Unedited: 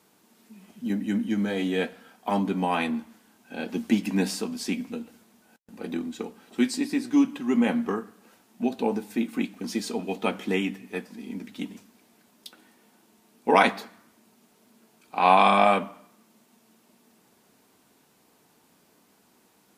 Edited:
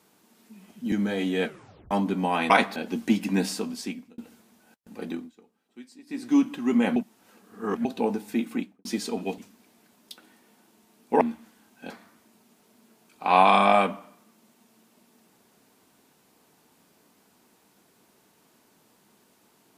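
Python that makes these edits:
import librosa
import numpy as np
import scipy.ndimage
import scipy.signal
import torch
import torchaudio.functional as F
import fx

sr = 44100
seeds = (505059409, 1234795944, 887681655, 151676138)

y = fx.studio_fade_out(x, sr, start_s=9.3, length_s=0.37)
y = fx.edit(y, sr, fx.cut(start_s=0.92, length_s=0.39),
    fx.tape_stop(start_s=1.83, length_s=0.47),
    fx.swap(start_s=2.89, length_s=0.69, other_s=13.56, other_length_s=0.26),
    fx.fade_out_span(start_s=4.49, length_s=0.51),
    fx.fade_down_up(start_s=5.79, length_s=1.44, db=-22.0, fade_s=0.35, curve='qsin'),
    fx.reverse_span(start_s=7.78, length_s=0.89),
    fx.cut(start_s=10.2, length_s=1.53), tone=tone)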